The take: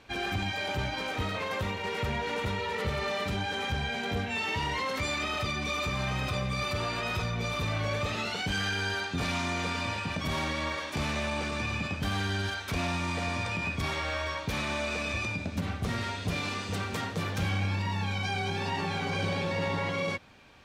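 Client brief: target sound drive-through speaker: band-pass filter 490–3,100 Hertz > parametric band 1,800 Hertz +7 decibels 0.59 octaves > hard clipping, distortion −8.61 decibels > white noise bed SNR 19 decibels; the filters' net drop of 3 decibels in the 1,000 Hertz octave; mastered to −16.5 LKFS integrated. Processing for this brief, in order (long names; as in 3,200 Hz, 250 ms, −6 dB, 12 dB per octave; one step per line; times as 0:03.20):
band-pass filter 490–3,100 Hz
parametric band 1,000 Hz −4.5 dB
parametric band 1,800 Hz +7 dB 0.59 octaves
hard clipping −35.5 dBFS
white noise bed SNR 19 dB
level +20 dB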